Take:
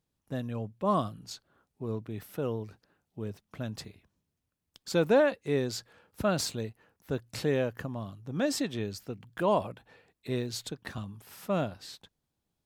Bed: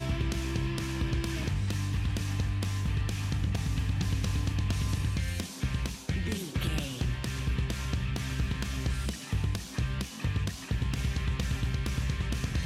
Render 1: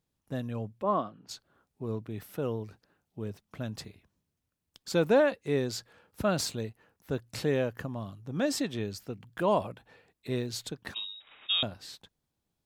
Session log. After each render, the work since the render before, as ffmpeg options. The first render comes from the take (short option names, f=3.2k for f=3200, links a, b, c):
-filter_complex "[0:a]asplit=3[a][b][c];[a]afade=t=out:st=0.82:d=0.02[d];[b]highpass=250,lowpass=2.2k,afade=t=in:st=0.82:d=0.02,afade=t=out:st=1.28:d=0.02[e];[c]afade=t=in:st=1.28:d=0.02[f];[d][e][f]amix=inputs=3:normalize=0,asettb=1/sr,asplit=3[g][h][i];[g]atrim=end=10.944[j];[h]atrim=start=10.94:end=11.63,asetpts=PTS-STARTPTS,afade=t=in:d=0.004:c=qsin,afade=t=out:st=0.686:d=0.004:c=qsin,lowpass=f=3.3k:t=q:w=0.5098,lowpass=f=3.3k:t=q:w=0.6013,lowpass=f=3.3k:t=q:w=0.9,lowpass=f=3.3k:t=q:w=2.563,afreqshift=-3900[k];[i]atrim=start=11.626[l];[j][k]acrossfade=d=0.004:c1=hsin:c2=qsin[m];[m][l]acrossfade=d=0.004:c1=qsin:c2=hsin"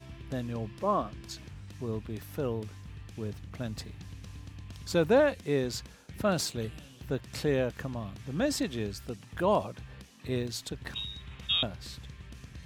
-filter_complex "[1:a]volume=-15.5dB[a];[0:a][a]amix=inputs=2:normalize=0"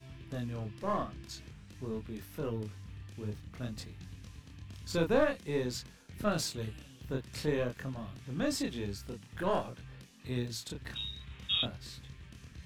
-filter_complex "[0:a]flanger=delay=22.5:depth=7.9:speed=0.5,acrossover=split=530|1000[a][b][c];[b]aeval=exprs='max(val(0),0)':c=same[d];[a][d][c]amix=inputs=3:normalize=0"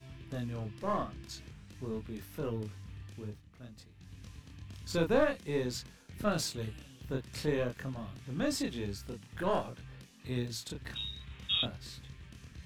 -filter_complex "[0:a]asplit=3[a][b][c];[a]atrim=end=3.43,asetpts=PTS-STARTPTS,afade=t=out:st=3.12:d=0.31:silence=0.298538[d];[b]atrim=start=3.43:end=3.94,asetpts=PTS-STARTPTS,volume=-10.5dB[e];[c]atrim=start=3.94,asetpts=PTS-STARTPTS,afade=t=in:d=0.31:silence=0.298538[f];[d][e][f]concat=n=3:v=0:a=1"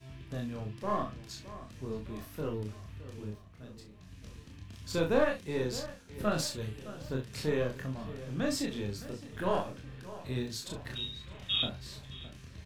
-filter_complex "[0:a]asplit=2[a][b];[b]adelay=38,volume=-7dB[c];[a][c]amix=inputs=2:normalize=0,asplit=2[d][e];[e]adelay=614,lowpass=f=2.8k:p=1,volume=-15dB,asplit=2[f][g];[g]adelay=614,lowpass=f=2.8k:p=1,volume=0.55,asplit=2[h][i];[i]adelay=614,lowpass=f=2.8k:p=1,volume=0.55,asplit=2[j][k];[k]adelay=614,lowpass=f=2.8k:p=1,volume=0.55,asplit=2[l][m];[m]adelay=614,lowpass=f=2.8k:p=1,volume=0.55[n];[d][f][h][j][l][n]amix=inputs=6:normalize=0"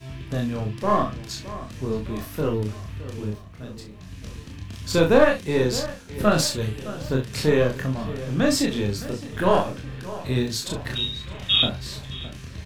-af "volume=11.5dB,alimiter=limit=-3dB:level=0:latency=1"